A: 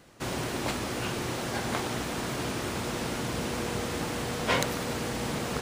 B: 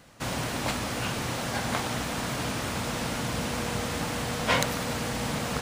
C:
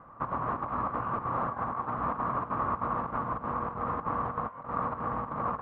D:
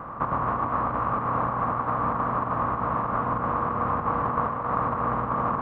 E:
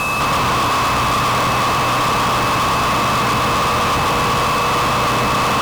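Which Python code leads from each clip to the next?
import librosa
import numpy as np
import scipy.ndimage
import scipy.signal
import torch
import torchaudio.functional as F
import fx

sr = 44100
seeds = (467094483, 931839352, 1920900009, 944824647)

y1 = fx.peak_eq(x, sr, hz=370.0, db=-9.0, octaves=0.45)
y1 = y1 * 10.0 ** (2.5 / 20.0)
y2 = fx.over_compress(y1, sr, threshold_db=-32.0, ratio=-0.5)
y2 = fx.chopper(y2, sr, hz=3.2, depth_pct=60, duty_pct=80)
y2 = fx.ladder_lowpass(y2, sr, hz=1200.0, resonance_pct=80)
y2 = y2 * 10.0 ** (8.5 / 20.0)
y3 = fx.bin_compress(y2, sr, power=0.6)
y3 = fx.rider(y3, sr, range_db=10, speed_s=0.5)
y3 = fx.echo_split(y3, sr, split_hz=390.0, low_ms=100, high_ms=267, feedback_pct=52, wet_db=-5.5)
y3 = y3 * 10.0 ** (2.0 / 20.0)
y4 = y3 + 10.0 ** (-3.5 / 20.0) * np.pad(y3, (int(115 * sr / 1000.0), 0))[:len(y3)]
y4 = y4 + 10.0 ** (-36.0 / 20.0) * np.sin(2.0 * np.pi * 2600.0 * np.arange(len(y4)) / sr)
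y4 = fx.fuzz(y4, sr, gain_db=37.0, gate_db=-44.0)
y4 = y4 * 10.0 ** (-2.0 / 20.0)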